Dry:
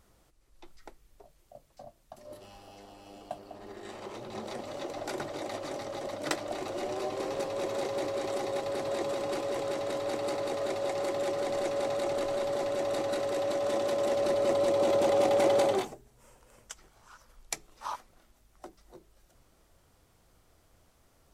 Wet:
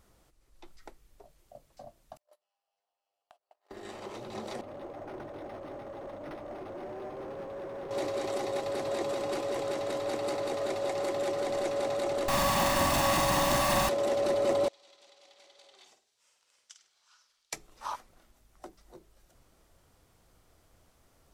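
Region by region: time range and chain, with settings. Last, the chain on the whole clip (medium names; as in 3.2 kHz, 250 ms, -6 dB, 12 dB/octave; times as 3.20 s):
2.17–3.71 s: gate -44 dBFS, range -34 dB + high-pass 600 Hz 24 dB/octave + compression, threshold -56 dBFS
4.61–7.91 s: valve stage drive 36 dB, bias 0.45 + treble shelf 2.4 kHz -11.5 dB + decimation joined by straight lines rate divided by 6×
12.28–13.89 s: comb filter that takes the minimum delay 1.1 ms + companded quantiser 2-bit + flutter echo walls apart 8 m, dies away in 0.44 s
14.68–17.53 s: compression 20:1, threshold -38 dBFS + band-pass filter 4.3 kHz, Q 1.5 + flutter echo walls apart 8.7 m, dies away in 0.37 s
whole clip: none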